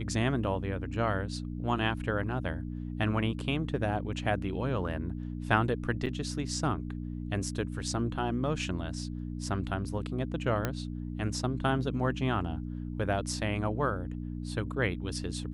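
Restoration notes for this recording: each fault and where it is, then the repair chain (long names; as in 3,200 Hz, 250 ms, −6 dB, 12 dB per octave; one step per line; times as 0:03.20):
mains hum 60 Hz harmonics 5 −37 dBFS
0:06.06–0:06.07: drop-out 6 ms
0:10.65: click −15 dBFS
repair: click removal
hum removal 60 Hz, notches 5
repair the gap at 0:06.06, 6 ms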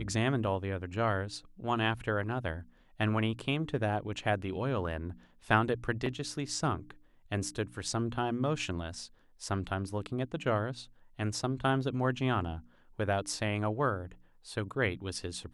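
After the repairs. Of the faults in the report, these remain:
none of them is left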